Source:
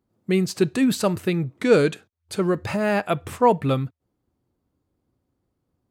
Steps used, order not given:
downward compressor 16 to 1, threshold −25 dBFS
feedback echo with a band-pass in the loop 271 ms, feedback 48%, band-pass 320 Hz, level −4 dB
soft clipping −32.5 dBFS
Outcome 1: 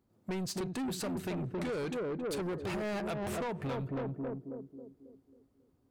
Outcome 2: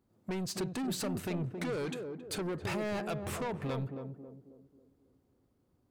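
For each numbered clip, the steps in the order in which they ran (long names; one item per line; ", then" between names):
feedback echo with a band-pass in the loop, then downward compressor, then soft clipping
downward compressor, then soft clipping, then feedback echo with a band-pass in the loop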